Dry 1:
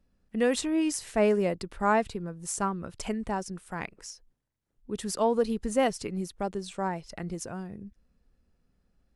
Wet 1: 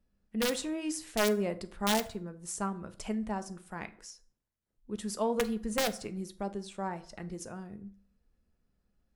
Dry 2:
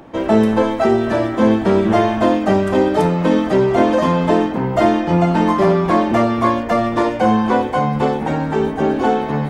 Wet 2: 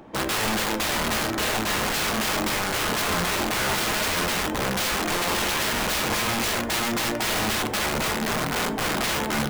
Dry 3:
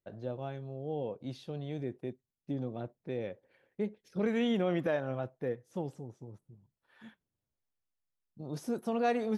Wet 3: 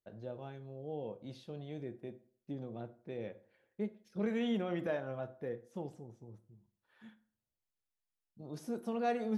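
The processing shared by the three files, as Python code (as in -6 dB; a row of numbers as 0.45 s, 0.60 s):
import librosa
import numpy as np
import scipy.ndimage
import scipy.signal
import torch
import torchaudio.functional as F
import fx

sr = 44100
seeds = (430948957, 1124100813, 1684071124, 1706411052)

y = (np.mod(10.0 ** (15.0 / 20.0) * x + 1.0, 2.0) - 1.0) / 10.0 ** (15.0 / 20.0)
y = fx.rev_fdn(y, sr, rt60_s=0.51, lf_ratio=0.9, hf_ratio=0.65, size_ms=28.0, drr_db=9.5)
y = y * librosa.db_to_amplitude(-5.5)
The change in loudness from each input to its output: -4.5 LU, -8.0 LU, -4.5 LU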